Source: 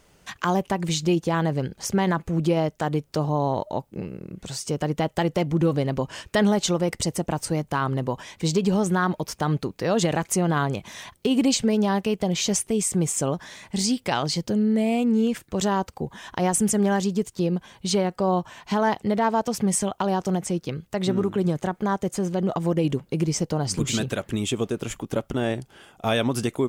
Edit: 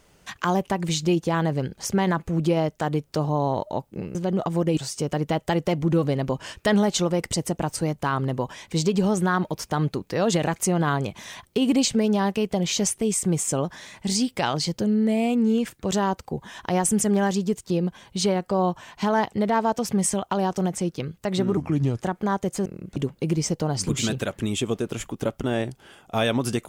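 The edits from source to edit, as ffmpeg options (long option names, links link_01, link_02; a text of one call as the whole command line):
ffmpeg -i in.wav -filter_complex "[0:a]asplit=7[link_01][link_02][link_03][link_04][link_05][link_06][link_07];[link_01]atrim=end=4.152[link_08];[link_02]atrim=start=22.248:end=22.872[link_09];[link_03]atrim=start=4.458:end=21.264[link_10];[link_04]atrim=start=21.26:end=21.6,asetpts=PTS-STARTPTS,asetrate=34398,aresample=44100,atrim=end_sample=19223,asetpts=PTS-STARTPTS[link_11];[link_05]atrim=start=21.596:end=22.252[link_12];[link_06]atrim=start=4.148:end=4.462[link_13];[link_07]atrim=start=22.868[link_14];[link_08][link_09]acrossfade=duration=0.004:curve1=hsin:curve2=hsin[link_15];[link_15][link_10]acrossfade=duration=0.004:curve1=hsin:curve2=hsin[link_16];[link_16][link_11]acrossfade=duration=0.004:curve1=hsin:curve2=hsin[link_17];[link_17][link_12]acrossfade=duration=0.004:curve1=hsin:curve2=hsin[link_18];[link_18][link_13]acrossfade=duration=0.004:curve1=hsin:curve2=hsin[link_19];[link_19][link_14]acrossfade=duration=0.004:curve1=hsin:curve2=hsin" out.wav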